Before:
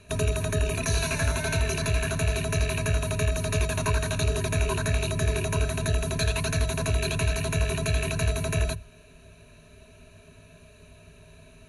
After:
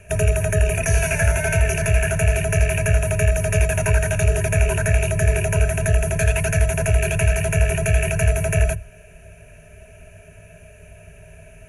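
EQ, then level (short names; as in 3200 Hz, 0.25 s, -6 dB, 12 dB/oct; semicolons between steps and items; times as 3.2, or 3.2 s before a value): fixed phaser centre 1100 Hz, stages 6; +9.0 dB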